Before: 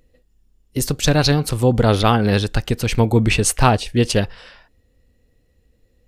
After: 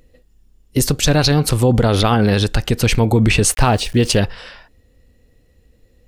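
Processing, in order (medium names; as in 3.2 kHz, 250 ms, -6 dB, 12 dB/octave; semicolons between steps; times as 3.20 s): peak limiter -11 dBFS, peak gain reduction 9.5 dB; 3.44–4.18 s: small samples zeroed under -40.5 dBFS; trim +6 dB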